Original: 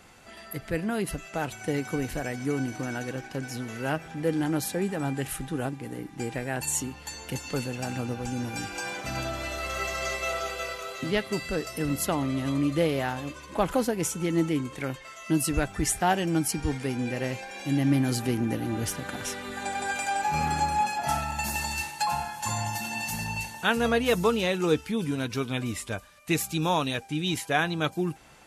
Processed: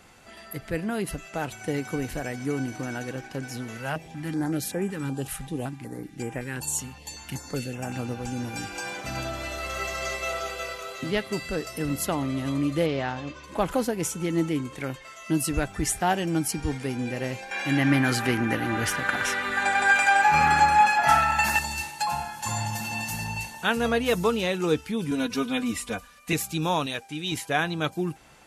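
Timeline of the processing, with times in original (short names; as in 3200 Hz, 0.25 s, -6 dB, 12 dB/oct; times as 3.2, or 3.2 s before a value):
3.77–7.94 stepped notch 5.3 Hz 330–4200 Hz
12.86–13.44 LPF 6100 Hz 24 dB/oct
17.51–21.59 bell 1600 Hz +14 dB 2 oct
22.27–22.85 reverb throw, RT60 2.9 s, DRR 4.5 dB
25.11–26.33 comb 4.1 ms, depth 96%
26.86–27.32 low shelf 270 Hz -9 dB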